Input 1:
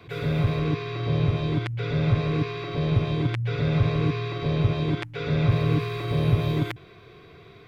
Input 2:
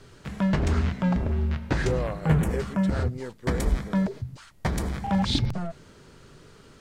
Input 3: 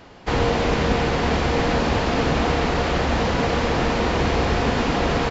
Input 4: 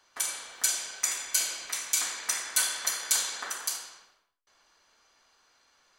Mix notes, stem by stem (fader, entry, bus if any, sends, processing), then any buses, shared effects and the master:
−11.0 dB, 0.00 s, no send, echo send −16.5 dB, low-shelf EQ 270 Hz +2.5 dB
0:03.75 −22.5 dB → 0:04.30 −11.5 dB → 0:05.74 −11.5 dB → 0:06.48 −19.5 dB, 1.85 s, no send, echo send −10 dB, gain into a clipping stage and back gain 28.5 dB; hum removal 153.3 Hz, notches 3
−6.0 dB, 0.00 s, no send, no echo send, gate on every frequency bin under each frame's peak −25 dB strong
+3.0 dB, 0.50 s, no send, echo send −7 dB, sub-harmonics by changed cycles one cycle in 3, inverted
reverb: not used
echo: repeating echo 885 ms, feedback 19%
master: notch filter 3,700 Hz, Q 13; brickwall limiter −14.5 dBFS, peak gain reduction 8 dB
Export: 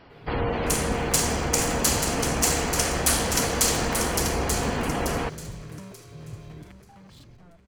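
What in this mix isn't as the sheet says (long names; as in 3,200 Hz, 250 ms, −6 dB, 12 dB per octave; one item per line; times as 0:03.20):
stem 1 −11.0 dB → −20.5 dB
master: missing brickwall limiter −14.5 dBFS, peak gain reduction 8 dB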